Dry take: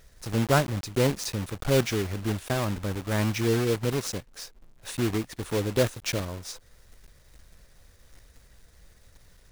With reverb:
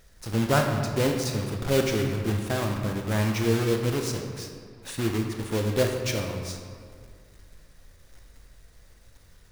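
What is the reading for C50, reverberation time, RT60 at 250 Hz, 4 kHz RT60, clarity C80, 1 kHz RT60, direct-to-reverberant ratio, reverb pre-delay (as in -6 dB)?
4.5 dB, 2.1 s, 2.2 s, 1.2 s, 6.0 dB, 1.9 s, 2.5 dB, 15 ms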